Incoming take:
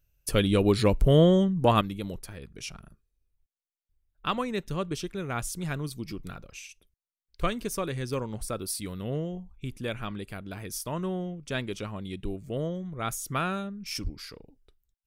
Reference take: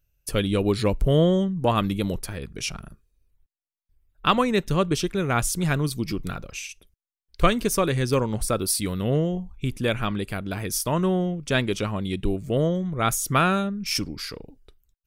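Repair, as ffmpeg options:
-filter_complex "[0:a]asplit=3[a][b][c];[a]afade=t=out:st=14.03:d=0.02[d];[b]highpass=f=140:w=0.5412,highpass=f=140:w=1.3066,afade=t=in:st=14.03:d=0.02,afade=t=out:st=14.15:d=0.02[e];[c]afade=t=in:st=14.15:d=0.02[f];[d][e][f]amix=inputs=3:normalize=0,asetnsamples=n=441:p=0,asendcmd='1.81 volume volume 9dB',volume=0dB"

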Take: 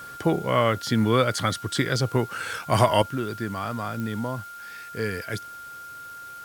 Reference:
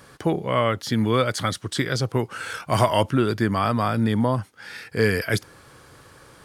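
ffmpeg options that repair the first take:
-af "adeclick=t=4,bandreject=f=1.4k:w=30,afwtdn=0.0028,asetnsamples=n=441:p=0,asendcmd='3.02 volume volume 8.5dB',volume=0dB"

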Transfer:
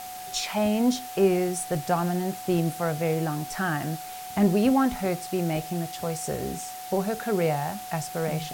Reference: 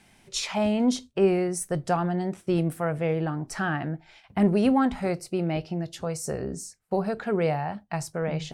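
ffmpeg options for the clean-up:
-af "bandreject=f=740:w=30,afftdn=nr=18:nf=-38"

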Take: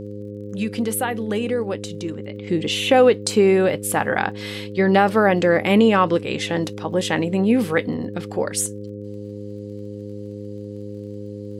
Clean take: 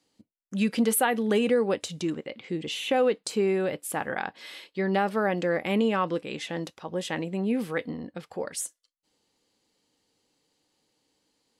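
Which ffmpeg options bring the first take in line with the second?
-af "adeclick=t=4,bandreject=f=102.9:t=h:w=4,bandreject=f=205.8:t=h:w=4,bandreject=f=308.7:t=h:w=4,bandreject=f=411.6:t=h:w=4,bandreject=f=514.5:t=h:w=4,asetnsamples=n=441:p=0,asendcmd='2.47 volume volume -9.5dB',volume=0dB"

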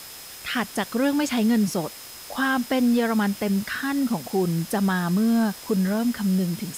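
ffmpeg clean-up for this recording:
-af "bandreject=f=5.1k:w=30,afwtdn=0.01"

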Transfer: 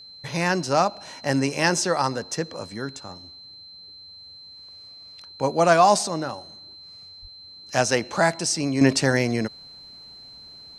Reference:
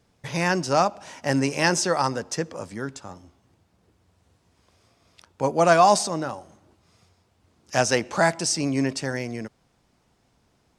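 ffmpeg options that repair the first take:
-filter_complex "[0:a]bandreject=f=4.1k:w=30,asplit=3[a][b][c];[a]afade=t=out:st=7.21:d=0.02[d];[b]highpass=f=140:w=0.5412,highpass=f=140:w=1.3066,afade=t=in:st=7.21:d=0.02,afade=t=out:st=7.33:d=0.02[e];[c]afade=t=in:st=7.33:d=0.02[f];[d][e][f]amix=inputs=3:normalize=0,asetnsamples=n=441:p=0,asendcmd='8.81 volume volume -8dB',volume=0dB"

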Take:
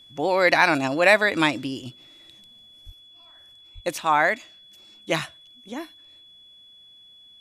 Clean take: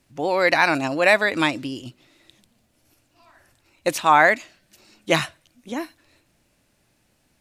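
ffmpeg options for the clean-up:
-filter_complex "[0:a]bandreject=f=3.4k:w=30,asplit=3[a][b][c];[a]afade=t=out:st=2.85:d=0.02[d];[b]highpass=f=140:w=0.5412,highpass=f=140:w=1.3066,afade=t=in:st=2.85:d=0.02,afade=t=out:st=2.97:d=0.02[e];[c]afade=t=in:st=2.97:d=0.02[f];[d][e][f]amix=inputs=3:normalize=0,asplit=3[g][h][i];[g]afade=t=out:st=3.74:d=0.02[j];[h]highpass=f=140:w=0.5412,highpass=f=140:w=1.3066,afade=t=in:st=3.74:d=0.02,afade=t=out:st=3.86:d=0.02[k];[i]afade=t=in:st=3.86:d=0.02[l];[j][k][l]amix=inputs=3:normalize=0,asetnsamples=n=441:p=0,asendcmd='2.9 volume volume 5dB',volume=0dB"

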